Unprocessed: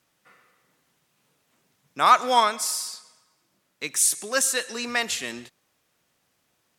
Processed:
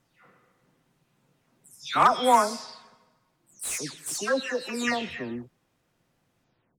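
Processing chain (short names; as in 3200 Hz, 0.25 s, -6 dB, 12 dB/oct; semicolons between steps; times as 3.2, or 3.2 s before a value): spectral delay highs early, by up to 0.351 s; tilt -2.5 dB/oct; slew limiter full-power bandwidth 280 Hz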